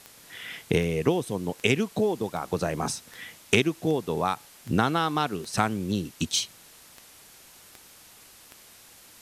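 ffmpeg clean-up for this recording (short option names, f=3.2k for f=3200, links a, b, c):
-af "adeclick=t=4,afwtdn=0.0032"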